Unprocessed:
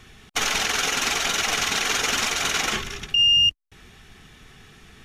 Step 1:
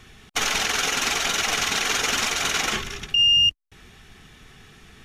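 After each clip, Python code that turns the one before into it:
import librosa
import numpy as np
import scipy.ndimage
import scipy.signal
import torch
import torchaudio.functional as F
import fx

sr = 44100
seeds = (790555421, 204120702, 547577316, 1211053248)

y = x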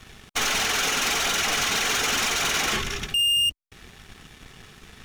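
y = fx.leveller(x, sr, passes=3)
y = y * librosa.db_to_amplitude(-7.0)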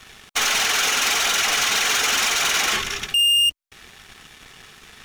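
y = fx.low_shelf(x, sr, hz=410.0, db=-11.0)
y = y * librosa.db_to_amplitude(4.5)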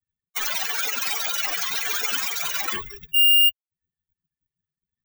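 y = fx.bin_expand(x, sr, power=3.0)
y = (np.kron(scipy.signal.resample_poly(y, 1, 2), np.eye(2)[0]) * 2)[:len(y)]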